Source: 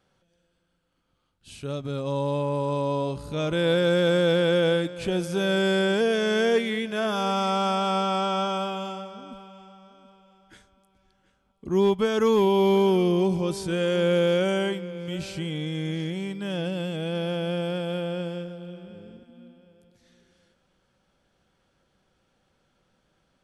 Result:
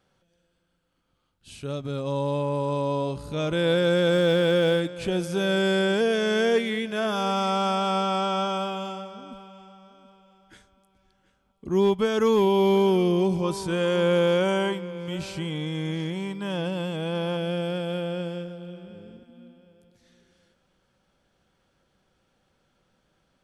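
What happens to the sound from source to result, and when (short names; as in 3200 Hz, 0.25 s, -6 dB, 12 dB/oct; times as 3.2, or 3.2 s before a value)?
4.12–4.8 zero-crossing step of -40 dBFS
13.44–17.37 bell 1000 Hz +10 dB 0.47 oct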